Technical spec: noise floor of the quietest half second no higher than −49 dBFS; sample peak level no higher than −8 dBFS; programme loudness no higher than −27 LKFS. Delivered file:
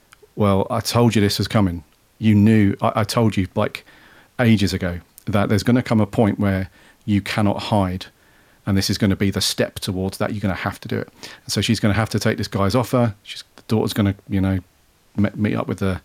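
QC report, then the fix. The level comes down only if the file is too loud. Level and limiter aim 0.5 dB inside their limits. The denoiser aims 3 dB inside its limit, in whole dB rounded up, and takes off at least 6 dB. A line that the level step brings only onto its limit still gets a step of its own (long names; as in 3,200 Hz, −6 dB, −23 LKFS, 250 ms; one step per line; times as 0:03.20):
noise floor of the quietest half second −57 dBFS: in spec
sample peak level −4.5 dBFS: out of spec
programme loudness −20.0 LKFS: out of spec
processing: level −7.5 dB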